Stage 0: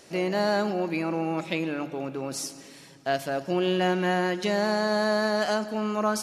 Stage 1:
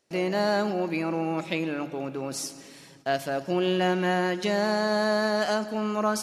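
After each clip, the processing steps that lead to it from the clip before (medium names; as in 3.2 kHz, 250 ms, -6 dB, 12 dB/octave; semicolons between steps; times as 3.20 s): gate with hold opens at -41 dBFS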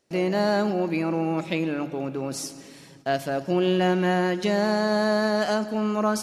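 bass shelf 440 Hz +5 dB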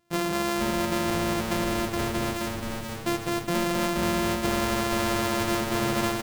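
sorted samples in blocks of 128 samples; compression 4:1, threshold -26 dBFS, peak gain reduction 8 dB; on a send: frequency-shifting echo 477 ms, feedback 54%, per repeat -120 Hz, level -5 dB; on the sum: trim +1.5 dB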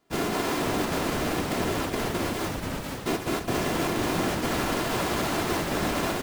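in parallel at 0 dB: peak limiter -21 dBFS, peak gain reduction 7 dB; on the sum: whisper effect; trim -5.5 dB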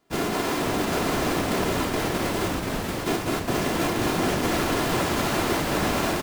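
delay 740 ms -4.5 dB; trim +1.5 dB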